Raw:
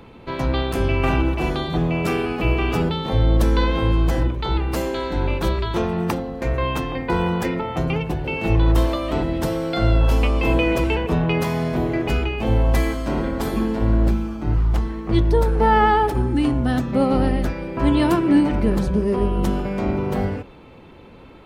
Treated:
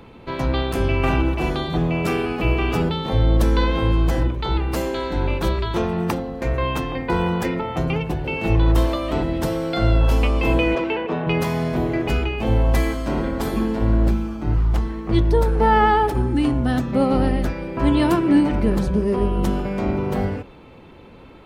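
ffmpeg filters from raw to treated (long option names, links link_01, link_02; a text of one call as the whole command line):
ffmpeg -i in.wav -filter_complex "[0:a]asettb=1/sr,asplit=3[link_01][link_02][link_03];[link_01]atrim=end=10.754[link_04];[link_02]atrim=start=10.75:end=11.27,asetpts=PTS-STARTPTS,afade=type=in:duration=0.004:curve=qsin,afade=type=out:start_time=0.516:duration=0.004:curve=qsin,highpass=250,lowpass=3300[link_05];[link_03]atrim=start=11.266[link_06];[link_04][link_05]acrossfade=duration=0.004:curve1=hsin:curve2=qsin[link_07];[link_07][link_06]acrossfade=duration=0.004:curve1=qsin:curve2=hsin" out.wav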